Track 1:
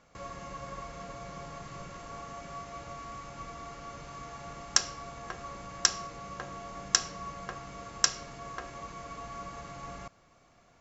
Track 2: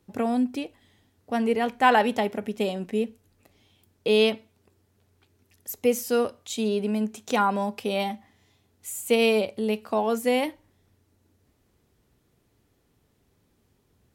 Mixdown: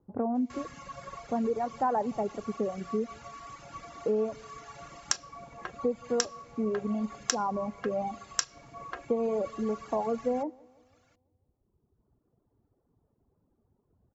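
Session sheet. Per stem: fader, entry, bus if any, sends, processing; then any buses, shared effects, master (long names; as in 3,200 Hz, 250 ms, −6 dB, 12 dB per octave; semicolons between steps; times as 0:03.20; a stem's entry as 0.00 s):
+2.0 dB, 0.35 s, no send, no echo send, low-shelf EQ 74 Hz −10.5 dB
−1.5 dB, 0.00 s, no send, echo send −17.5 dB, low-pass filter 1,100 Hz 24 dB per octave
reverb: not used
echo: repeating echo 168 ms, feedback 50%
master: reverb reduction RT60 1.6 s; downward compressor 3 to 1, threshold −26 dBFS, peak gain reduction 9 dB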